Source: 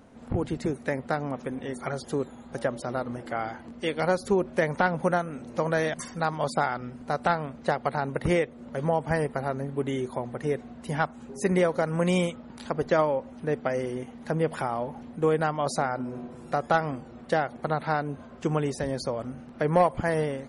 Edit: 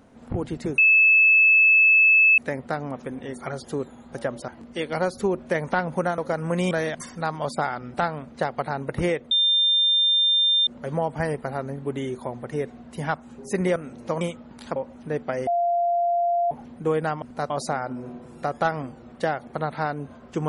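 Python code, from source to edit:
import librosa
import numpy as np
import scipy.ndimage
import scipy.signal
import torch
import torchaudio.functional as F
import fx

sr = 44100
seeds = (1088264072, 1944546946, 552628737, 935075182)

y = fx.edit(x, sr, fx.insert_tone(at_s=0.78, length_s=1.6, hz=2610.0, db=-12.5),
    fx.cut(start_s=2.88, length_s=0.67),
    fx.swap(start_s=5.25, length_s=0.45, other_s=11.67, other_length_s=0.53),
    fx.move(start_s=6.93, length_s=0.28, to_s=15.59),
    fx.insert_tone(at_s=8.58, length_s=1.36, hz=3600.0, db=-16.5),
    fx.cut(start_s=12.75, length_s=0.38),
    fx.bleep(start_s=13.84, length_s=1.04, hz=693.0, db=-19.0), tone=tone)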